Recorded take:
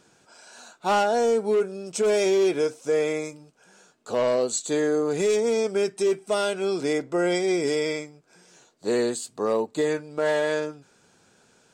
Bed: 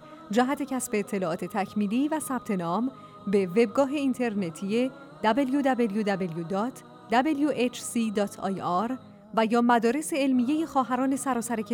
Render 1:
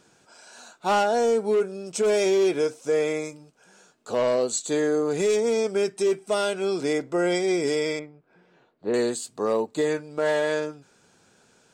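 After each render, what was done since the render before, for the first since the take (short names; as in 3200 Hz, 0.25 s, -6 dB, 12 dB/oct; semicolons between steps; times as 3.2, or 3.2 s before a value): 7.99–8.94 air absorption 450 m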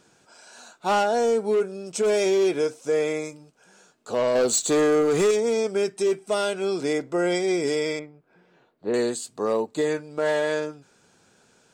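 4.35–5.31 sample leveller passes 2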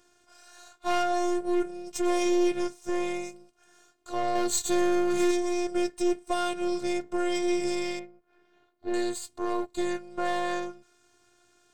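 half-wave gain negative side -7 dB; robotiser 353 Hz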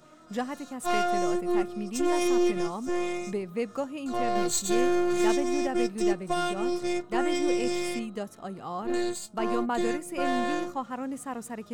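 add bed -8.5 dB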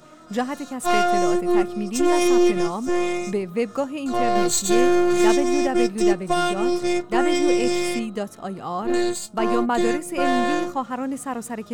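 gain +7 dB; limiter -3 dBFS, peak gain reduction 1.5 dB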